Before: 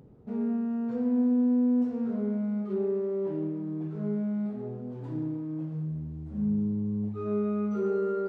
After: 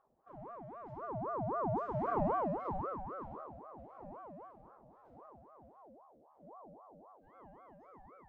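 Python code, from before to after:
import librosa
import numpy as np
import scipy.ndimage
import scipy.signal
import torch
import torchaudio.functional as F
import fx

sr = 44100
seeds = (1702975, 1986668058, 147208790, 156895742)

y = fx.doppler_pass(x, sr, speed_mps=10, closest_m=2.6, pass_at_s=2.25)
y = fx.ring_lfo(y, sr, carrier_hz=660.0, swing_pct=45, hz=3.8)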